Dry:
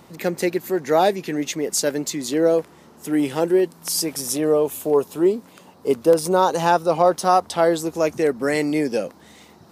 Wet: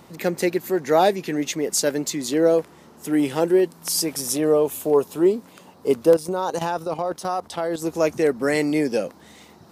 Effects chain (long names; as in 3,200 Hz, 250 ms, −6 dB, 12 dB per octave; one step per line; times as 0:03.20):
0:06.16–0:07.82: output level in coarse steps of 12 dB